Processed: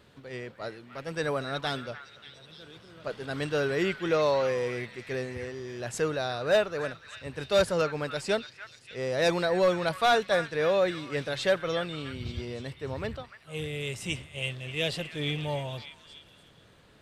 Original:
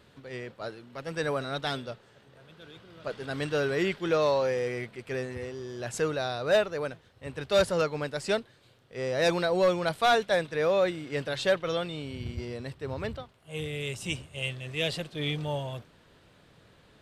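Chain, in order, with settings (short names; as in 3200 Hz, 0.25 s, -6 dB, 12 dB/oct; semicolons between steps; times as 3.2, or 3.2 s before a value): delay with a stepping band-pass 0.293 s, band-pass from 1600 Hz, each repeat 0.7 oct, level -8 dB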